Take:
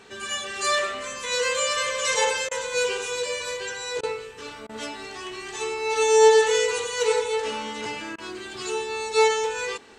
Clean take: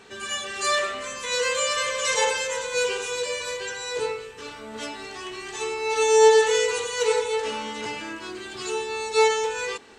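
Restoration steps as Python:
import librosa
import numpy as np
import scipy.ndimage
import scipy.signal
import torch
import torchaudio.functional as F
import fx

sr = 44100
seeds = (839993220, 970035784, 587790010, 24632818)

y = fx.fix_interpolate(x, sr, at_s=(2.49, 4.01, 4.67, 8.16), length_ms=21.0)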